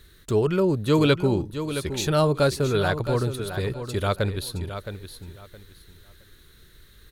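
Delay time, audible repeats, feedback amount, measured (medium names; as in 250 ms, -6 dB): 667 ms, 2, 23%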